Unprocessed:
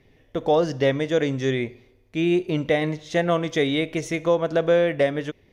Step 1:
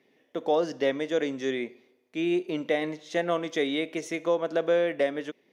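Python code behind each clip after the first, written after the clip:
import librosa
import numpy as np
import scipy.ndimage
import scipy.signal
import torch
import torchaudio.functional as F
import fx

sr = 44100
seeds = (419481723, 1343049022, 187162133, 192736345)

y = scipy.signal.sosfilt(scipy.signal.butter(4, 210.0, 'highpass', fs=sr, output='sos'), x)
y = y * librosa.db_to_amplitude(-5.0)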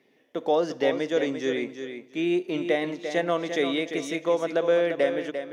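y = fx.echo_feedback(x, sr, ms=346, feedback_pct=21, wet_db=-8.5)
y = y * librosa.db_to_amplitude(1.5)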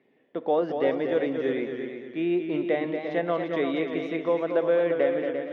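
y = fx.air_absorb(x, sr, metres=390.0)
y = fx.echo_warbled(y, sr, ms=231, feedback_pct=33, rate_hz=2.8, cents=79, wet_db=-7.0)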